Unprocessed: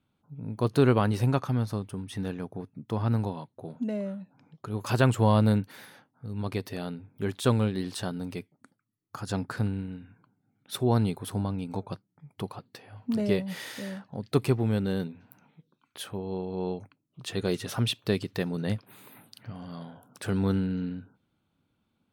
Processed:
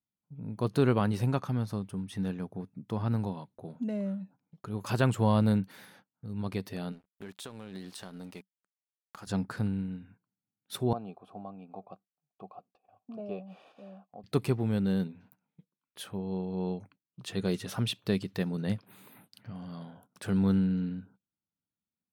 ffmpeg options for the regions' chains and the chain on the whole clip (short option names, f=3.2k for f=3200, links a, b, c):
-filter_complex "[0:a]asettb=1/sr,asplit=3[a][b][c];[a]atrim=end=6.924[d];[b]atrim=start=6.92:end=9.27,asetpts=PTS-STARTPTS,afade=t=in:d=0.004:c=qsin,afade=t=out:st=2.346:d=0.004:c=qsin,highpass=f=350:p=1,acompressor=threshold=-34dB:ratio=10:attack=3.2:release=140:knee=1:detection=peak,aeval=exprs='sgn(val(0))*max(abs(val(0))-0.00224,0)':c=same[e];[c]atrim=start=9.266[f];[d][e]acrossfade=d=0.004:c1=hsin:c2=qsin[g];[g][f]acrossfade=d=0.004:c1=qsin:c2=hsin,asettb=1/sr,asplit=3[h][i][j];[h]atrim=end=10.934[k];[i]atrim=start=10.93:end=14.24,asetpts=PTS-STARTPTS,afade=t=in:d=0.004:c=qsin,afade=t=out:st=3.306:d=0.004:c=qsin,asplit=3[l][m][n];[l]bandpass=f=730:t=q:w=8,volume=0dB[o];[m]bandpass=f=1.09k:t=q:w=8,volume=-6dB[p];[n]bandpass=f=2.44k:t=q:w=8,volume=-9dB[q];[o][p][q]amix=inputs=3:normalize=0,equalizer=f=190:w=0.31:g=11,bandreject=f=2.1k:w=7.1[r];[j]atrim=start=14.236[s];[k][r]acrossfade=d=0.004:c1=hsin:c2=qsin[t];[t][s]acrossfade=d=0.004:c1=qsin:c2=hsin,agate=range=-20dB:threshold=-54dB:ratio=16:detection=peak,equalizer=f=190:w=5.8:g=7,volume=-4dB"